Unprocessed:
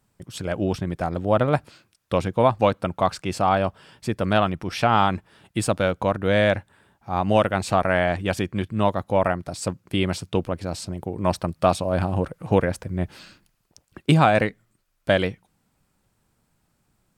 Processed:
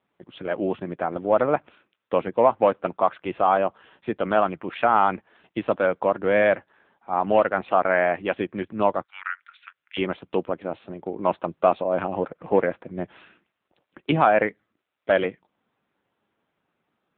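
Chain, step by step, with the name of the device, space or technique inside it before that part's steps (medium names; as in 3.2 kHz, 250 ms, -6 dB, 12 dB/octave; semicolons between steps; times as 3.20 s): 9.03–9.97 s: elliptic high-pass 1.4 kHz, stop band 60 dB; dynamic bell 5.6 kHz, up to -3 dB, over -42 dBFS, Q 0.97; telephone (band-pass 290–3100 Hz; saturation -6.5 dBFS, distortion -22 dB; trim +2.5 dB; AMR-NB 6.7 kbps 8 kHz)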